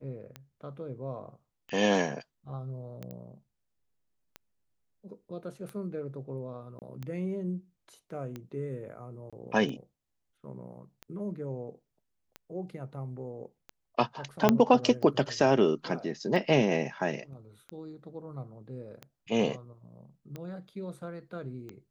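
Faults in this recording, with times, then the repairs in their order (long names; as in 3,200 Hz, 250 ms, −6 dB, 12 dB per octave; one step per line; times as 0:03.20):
scratch tick 45 rpm −26 dBFS
0:03.11: click −29 dBFS
0:06.79–0:06.82: drop-out 28 ms
0:09.30–0:09.33: drop-out 26 ms
0:14.49: click −7 dBFS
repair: click removal
repair the gap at 0:06.79, 28 ms
repair the gap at 0:09.30, 26 ms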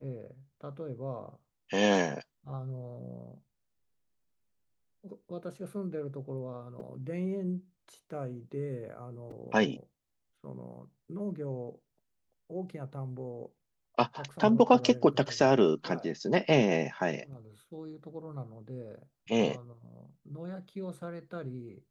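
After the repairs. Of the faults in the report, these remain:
0:14.49: click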